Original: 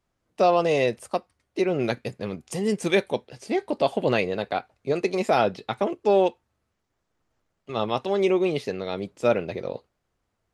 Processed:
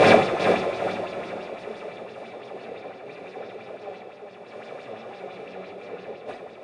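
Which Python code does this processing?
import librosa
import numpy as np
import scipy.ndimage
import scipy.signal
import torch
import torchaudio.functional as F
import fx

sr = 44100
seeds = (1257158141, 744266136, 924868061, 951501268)

p1 = fx.bin_compress(x, sr, power=0.2)
p2 = fx.recorder_agc(p1, sr, target_db=-4.0, rise_db_per_s=8.1, max_gain_db=30)
p3 = fx.high_shelf(p2, sr, hz=6000.0, db=-6.0)
p4 = fx.hum_notches(p3, sr, base_hz=50, count=8)
p5 = fx.level_steps(p4, sr, step_db=18)
p6 = p4 + (p5 * 10.0 ** (1.5 / 20.0))
p7 = fx.stretch_vocoder(p6, sr, factor=0.63)
p8 = fx.gate_flip(p7, sr, shuts_db=-13.0, range_db=-40)
p9 = fx.air_absorb(p8, sr, metres=53.0)
p10 = p9 + fx.echo_feedback(p9, sr, ms=398, feedback_pct=34, wet_db=-8.0, dry=0)
p11 = fx.rev_double_slope(p10, sr, seeds[0], early_s=0.52, late_s=4.9, knee_db=-16, drr_db=-6.0)
p12 = fx.bell_lfo(p11, sr, hz=5.9, low_hz=440.0, high_hz=5300.0, db=8)
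y = p12 * 10.0 ** (3.5 / 20.0)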